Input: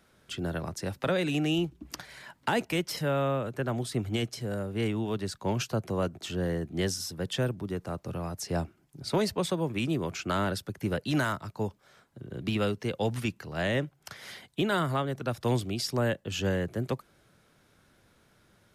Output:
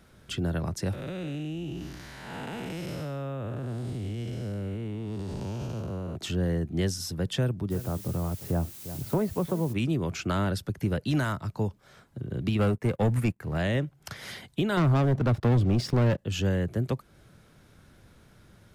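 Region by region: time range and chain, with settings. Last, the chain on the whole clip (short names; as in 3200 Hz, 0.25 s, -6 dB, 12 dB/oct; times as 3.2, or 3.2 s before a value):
0.93–6.16 time blur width 0.351 s + compressor 4:1, threshold -38 dBFS
7.7–9.72 LPF 1400 Hz + echo 0.349 s -17 dB + added noise blue -46 dBFS
12.59–13.58 band shelf 4200 Hz -11 dB 1.3 oct + sample leveller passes 2 + upward expander, over -45 dBFS
14.77–16.18 LPF 1200 Hz 6 dB/oct + sample leveller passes 3
whole clip: low shelf 200 Hz +10 dB; compressor 1.5:1, threshold -37 dBFS; gain +3.5 dB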